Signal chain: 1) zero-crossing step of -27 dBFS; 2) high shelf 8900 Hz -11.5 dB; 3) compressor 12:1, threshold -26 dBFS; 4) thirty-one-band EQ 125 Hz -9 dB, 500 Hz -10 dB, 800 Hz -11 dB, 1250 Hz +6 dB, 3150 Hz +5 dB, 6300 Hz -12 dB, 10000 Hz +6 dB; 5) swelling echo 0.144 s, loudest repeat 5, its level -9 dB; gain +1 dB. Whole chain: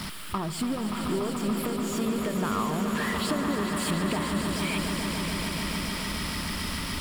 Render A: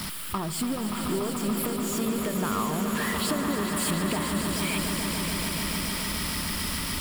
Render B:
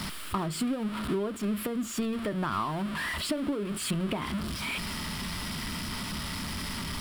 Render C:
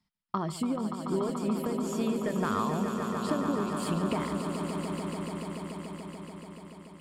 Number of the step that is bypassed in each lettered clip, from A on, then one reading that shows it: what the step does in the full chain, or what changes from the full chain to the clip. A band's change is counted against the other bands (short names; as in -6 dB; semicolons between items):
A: 2, 8 kHz band +5.0 dB; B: 5, echo-to-direct 0.5 dB to none; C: 1, distortion -10 dB